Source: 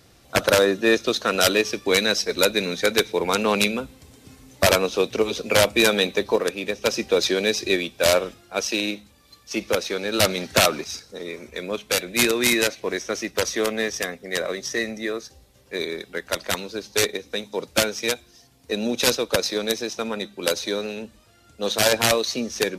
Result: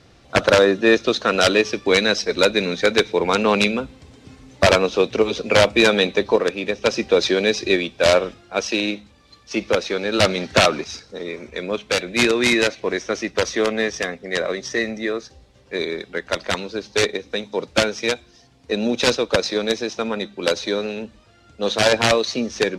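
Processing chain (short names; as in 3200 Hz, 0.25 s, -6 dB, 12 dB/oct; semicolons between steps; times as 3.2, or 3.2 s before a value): air absorption 96 m; gain +4 dB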